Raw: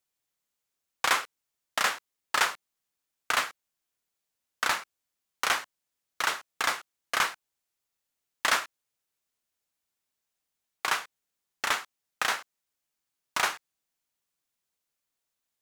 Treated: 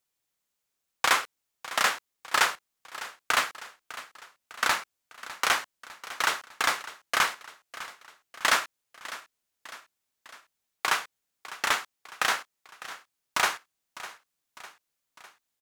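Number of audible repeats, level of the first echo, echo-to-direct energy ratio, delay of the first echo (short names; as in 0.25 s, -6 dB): 3, -16.0 dB, -14.5 dB, 0.603 s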